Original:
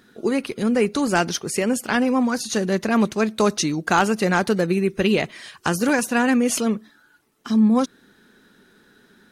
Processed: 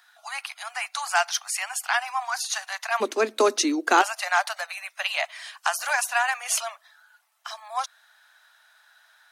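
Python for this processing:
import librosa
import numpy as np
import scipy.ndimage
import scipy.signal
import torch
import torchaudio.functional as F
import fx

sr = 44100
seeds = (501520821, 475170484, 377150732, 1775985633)

y = fx.steep_highpass(x, sr, hz=fx.steps((0.0, 690.0), (3.0, 250.0), (4.01, 630.0)), slope=96)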